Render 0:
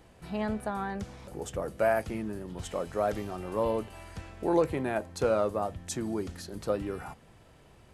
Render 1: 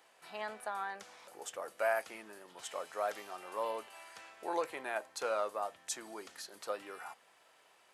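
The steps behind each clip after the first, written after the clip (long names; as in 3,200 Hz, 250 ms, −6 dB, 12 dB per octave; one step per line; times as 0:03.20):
high-pass filter 810 Hz 12 dB per octave
level −1.5 dB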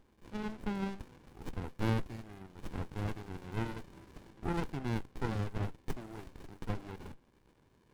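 two-band tremolo in antiphase 2.5 Hz, depth 50%, crossover 1,300 Hz
windowed peak hold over 65 samples
level +7 dB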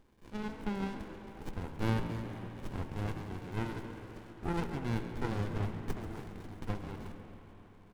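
echo with shifted repeats 136 ms, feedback 61%, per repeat +60 Hz, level −12.5 dB
convolution reverb RT60 4.6 s, pre-delay 52 ms, DRR 7.5 dB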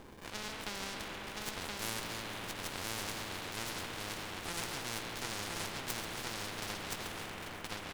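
single-tap delay 1,022 ms −3 dB
every bin compressed towards the loudest bin 4 to 1
level +1.5 dB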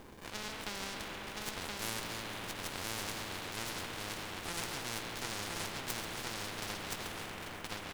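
log-companded quantiser 6 bits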